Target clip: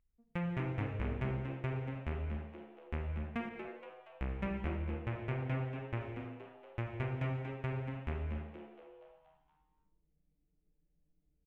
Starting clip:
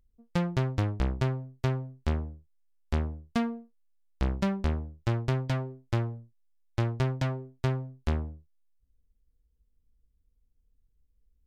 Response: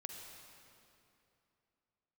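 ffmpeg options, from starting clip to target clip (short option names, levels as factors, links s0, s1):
-filter_complex "[0:a]highshelf=f=3300:t=q:w=3:g=-11.5,asplit=7[s0][s1][s2][s3][s4][s5][s6];[s1]adelay=235,afreqshift=140,volume=0.355[s7];[s2]adelay=470,afreqshift=280,volume=0.174[s8];[s3]adelay=705,afreqshift=420,volume=0.0851[s9];[s4]adelay=940,afreqshift=560,volume=0.0417[s10];[s5]adelay=1175,afreqshift=700,volume=0.0204[s11];[s6]adelay=1410,afreqshift=840,volume=0.01[s12];[s0][s7][s8][s9][s10][s11][s12]amix=inputs=7:normalize=0[s13];[1:a]atrim=start_sample=2205,afade=t=out:st=0.38:d=0.01,atrim=end_sample=17199[s14];[s13][s14]afir=irnorm=-1:irlink=0,asettb=1/sr,asplit=3[s15][s16][s17];[s15]atrim=end=3.494[s18];[s16]atrim=start=3.49:end=6.01,asetpts=PTS-STARTPTS,afade=t=in:d=0.004:c=qsin,afade=t=out:st=2.516:d=0.004:c=qsin,adynamicequalizer=threshold=0.00158:dfrequency=4300:dqfactor=0.7:tfrequency=4300:tqfactor=0.7:attack=5:release=100:ratio=0.375:range=2:mode=cutabove:tftype=highshelf[s19];[s17]atrim=start=6.006[s20];[s18][s19]acrossfade=d=0.004:c1=hsin:c2=qsin[s21];[s21][s20]acrossfade=d=0.004:c1=qsin:c2=hsin,volume=0.501"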